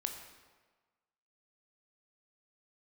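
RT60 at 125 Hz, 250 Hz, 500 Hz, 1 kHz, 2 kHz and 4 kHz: 1.2, 1.3, 1.4, 1.4, 1.2, 1.0 seconds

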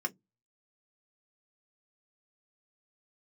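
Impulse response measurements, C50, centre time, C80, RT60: 28.5 dB, 5 ms, 40.5 dB, 0.15 s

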